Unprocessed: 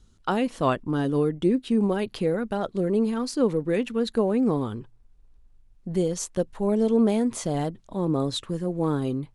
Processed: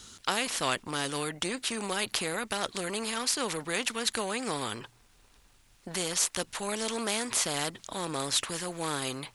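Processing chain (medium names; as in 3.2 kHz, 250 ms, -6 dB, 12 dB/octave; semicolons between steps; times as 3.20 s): high-pass 170 Hz 6 dB/octave; tilt shelf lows -7.5 dB, about 860 Hz; spectrum-flattening compressor 2:1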